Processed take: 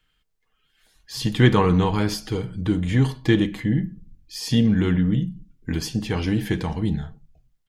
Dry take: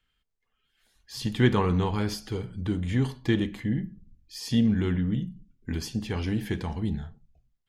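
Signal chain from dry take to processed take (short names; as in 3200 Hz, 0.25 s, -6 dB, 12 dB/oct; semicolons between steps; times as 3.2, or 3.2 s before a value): comb 6.4 ms, depth 30%; gain +6 dB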